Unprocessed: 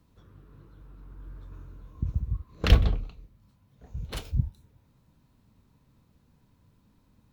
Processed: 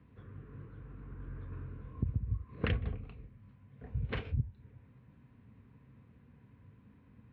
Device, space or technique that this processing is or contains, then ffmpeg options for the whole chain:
bass amplifier: -af "acompressor=threshold=0.0224:ratio=5,highpass=f=62:w=0.5412,highpass=f=62:w=1.3066,equalizer=f=75:t=q:w=4:g=-8,equalizer=f=170:t=q:w=4:g=-7,equalizer=f=330:t=q:w=4:g=-8,equalizer=f=610:t=q:w=4:g=-9,equalizer=f=870:t=q:w=4:g=-10,equalizer=f=1300:t=q:w=4:g=-7,lowpass=f=2300:w=0.5412,lowpass=f=2300:w=1.3066,volume=2.51"

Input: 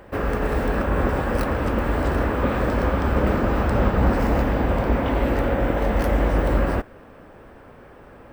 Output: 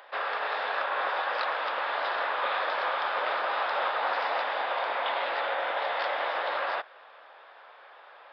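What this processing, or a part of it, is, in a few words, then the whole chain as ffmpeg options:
musical greeting card: -af "aresample=11025,aresample=44100,highpass=f=700:w=0.5412,highpass=f=700:w=1.3066,equalizer=f=3600:t=o:w=0.31:g=10"

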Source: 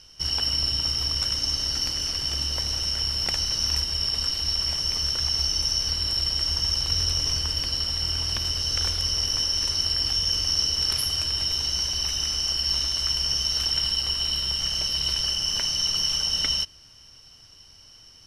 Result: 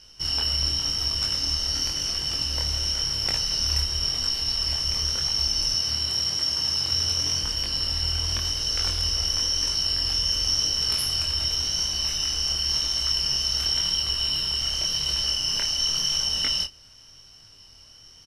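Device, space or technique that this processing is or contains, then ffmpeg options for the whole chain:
double-tracked vocal: -filter_complex "[0:a]asplit=2[s0][s1];[s1]adelay=28,volume=0.251[s2];[s0][s2]amix=inputs=2:normalize=0,flanger=delay=19:depth=7.6:speed=0.92,asettb=1/sr,asplit=3[s3][s4][s5];[s3]atrim=end=5.744[s6];[s4]atrim=start=5.74:end=7.43,asetpts=PTS-STARTPTS,afade=t=in:d=0.004:c=qsin,afade=t=out:st=1.686:d=0.004:c=qsin,highpass=f=87:w=0.5412,highpass=f=87:w=1.3066[s7];[s5]atrim=start=7.426[s8];[s6][s7]acrossfade=d=0.004:c1=hsin:c2=qsin[s9];[s9][s8]acrossfade=d=0.004:c1=qsin:c2=hsin,volume=1.41"

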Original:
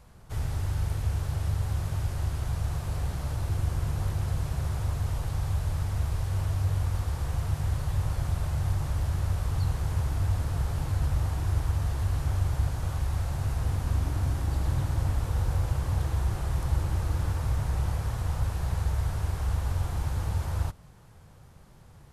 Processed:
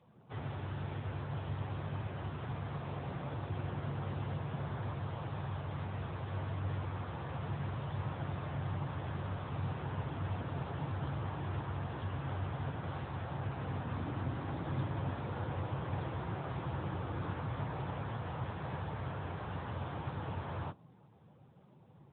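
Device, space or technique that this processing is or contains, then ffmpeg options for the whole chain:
mobile call with aggressive noise cancelling: -af "highpass=150,afftdn=nr=12:nf=-56" -ar 8000 -c:a libopencore_amrnb -b:a 10200

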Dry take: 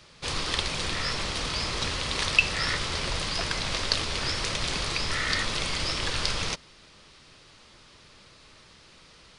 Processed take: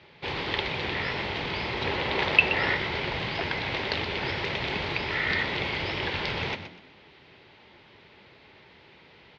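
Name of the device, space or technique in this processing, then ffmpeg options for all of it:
frequency-shifting delay pedal into a guitar cabinet: -filter_complex "[0:a]asettb=1/sr,asplit=3[s0][s1][s2];[s0]atrim=end=1.854[s3];[s1]atrim=start=1.85:end=2.74,asetpts=PTS-STARTPTS,afade=t=in:d=0.004:c=qsin,afade=t=out:st=0.886:d=0.004:c=qsin,equalizer=f=600:w=0.49:g=5[s4];[s2]atrim=start=2.736[s5];[s3][s4]acrossfade=d=0.004:c1=hsin:c2=qsin[s6];[s6][s5]acrossfade=d=0.004:c1=qsin:c2=hsin,asplit=4[s7][s8][s9][s10];[s8]adelay=124,afreqshift=83,volume=0.299[s11];[s9]adelay=248,afreqshift=166,volume=0.0891[s12];[s10]adelay=372,afreqshift=249,volume=0.0269[s13];[s7][s11][s12][s13]amix=inputs=4:normalize=0,highpass=78,equalizer=f=390:t=q:w=4:g=7,equalizer=f=860:t=q:w=4:g=7,equalizer=f=1200:t=q:w=4:g=-7,equalizer=f=2100:t=q:w=4:g=5,lowpass=f=3500:w=0.5412,lowpass=f=3500:w=1.3066"

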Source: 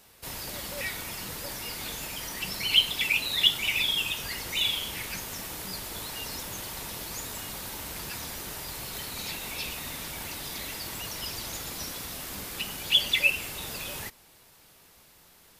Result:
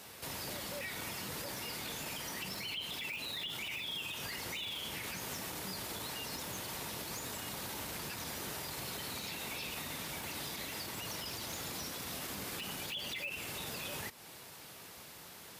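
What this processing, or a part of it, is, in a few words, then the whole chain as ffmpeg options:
podcast mastering chain: -af "highpass=92,highshelf=f=7600:g=-3.5,deesser=0.75,acompressor=threshold=0.00501:ratio=3,alimiter=level_in=5.31:limit=0.0631:level=0:latency=1:release=34,volume=0.188,volume=2.24" -ar 48000 -c:a libmp3lame -b:a 112k

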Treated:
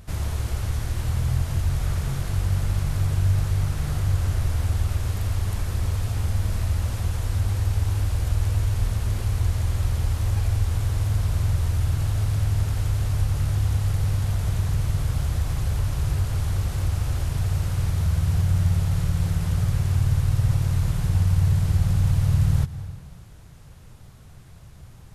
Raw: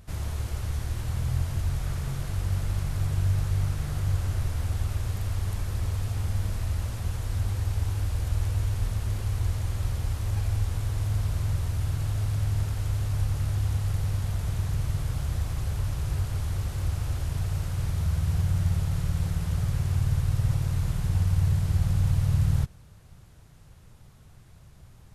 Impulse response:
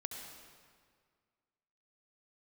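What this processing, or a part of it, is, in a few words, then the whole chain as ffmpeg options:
ducked reverb: -filter_complex "[0:a]asplit=3[s0][s1][s2];[1:a]atrim=start_sample=2205[s3];[s1][s3]afir=irnorm=-1:irlink=0[s4];[s2]apad=whole_len=1108795[s5];[s4][s5]sidechaincompress=threshold=0.0398:ratio=3:attack=9.3:release=220,volume=0.668[s6];[s0][s6]amix=inputs=2:normalize=0,volume=1.26"

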